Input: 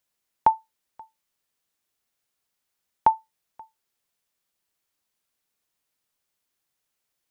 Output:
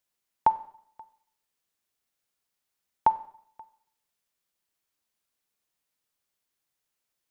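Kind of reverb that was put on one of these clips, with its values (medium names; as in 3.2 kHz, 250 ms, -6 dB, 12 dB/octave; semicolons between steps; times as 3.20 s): Schroeder reverb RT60 0.64 s, combs from 31 ms, DRR 14.5 dB; trim -3 dB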